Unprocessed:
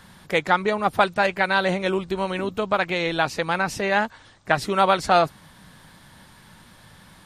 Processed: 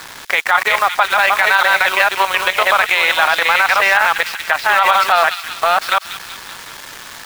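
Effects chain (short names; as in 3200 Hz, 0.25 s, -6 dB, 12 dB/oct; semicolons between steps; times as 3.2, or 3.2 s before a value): reverse delay 0.544 s, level -2.5 dB; in parallel at +3 dB: compressor 16:1, threshold -30 dBFS, peak gain reduction 18.5 dB; on the sum: Bessel high-pass 1200 Hz, order 4; high shelf 7200 Hz -10 dB; level quantiser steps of 10 dB; air absorption 190 m; bit-crush 8-bit; crossover distortion -48 dBFS; thin delay 0.19 s, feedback 58%, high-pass 3100 Hz, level -9 dB; maximiser +25 dB; gain -1 dB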